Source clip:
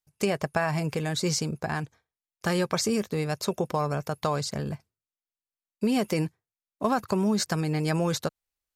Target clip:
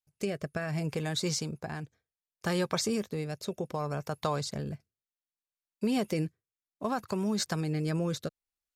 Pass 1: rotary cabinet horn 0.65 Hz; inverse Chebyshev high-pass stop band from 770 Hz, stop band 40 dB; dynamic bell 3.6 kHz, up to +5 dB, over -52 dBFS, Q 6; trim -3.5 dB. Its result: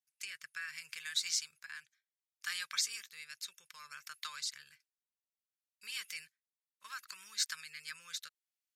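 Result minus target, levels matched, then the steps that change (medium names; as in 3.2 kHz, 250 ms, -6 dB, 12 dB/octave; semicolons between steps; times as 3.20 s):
1 kHz band -9.0 dB
remove: inverse Chebyshev high-pass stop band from 770 Hz, stop band 40 dB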